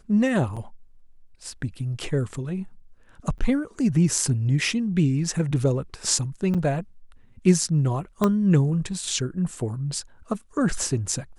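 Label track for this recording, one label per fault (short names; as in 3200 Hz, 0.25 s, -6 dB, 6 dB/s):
0.560000	0.570000	gap 6.3 ms
3.380000	3.390000	gap 8.6 ms
6.540000	6.550000	gap 6.7 ms
8.240000	8.240000	pop -9 dBFS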